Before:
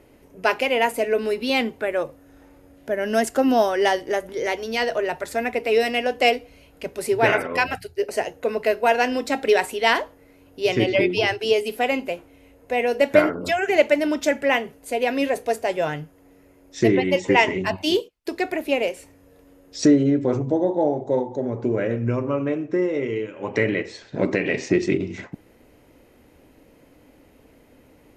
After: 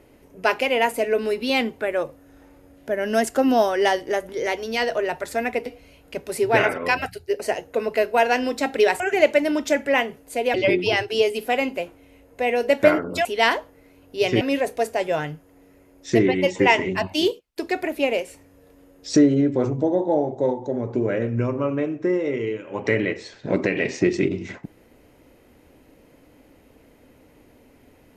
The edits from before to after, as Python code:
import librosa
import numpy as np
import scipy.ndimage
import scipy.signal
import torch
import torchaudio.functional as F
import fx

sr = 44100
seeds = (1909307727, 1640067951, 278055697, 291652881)

y = fx.edit(x, sr, fx.cut(start_s=5.66, length_s=0.69),
    fx.swap(start_s=9.69, length_s=1.16, other_s=13.56, other_length_s=1.54), tone=tone)